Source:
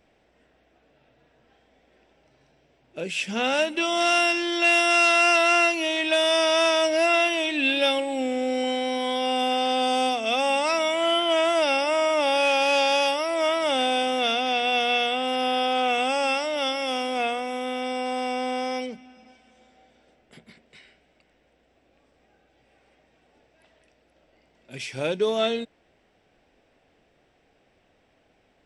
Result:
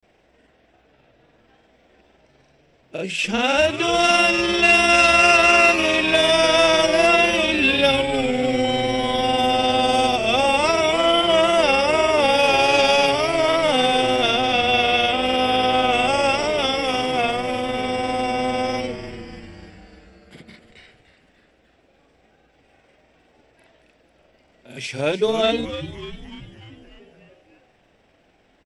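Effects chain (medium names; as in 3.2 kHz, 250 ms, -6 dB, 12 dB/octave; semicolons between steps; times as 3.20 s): granulator 100 ms, spray 33 ms, pitch spread up and down by 0 st; frequency-shifting echo 296 ms, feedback 61%, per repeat -140 Hz, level -11.5 dB; trim +6 dB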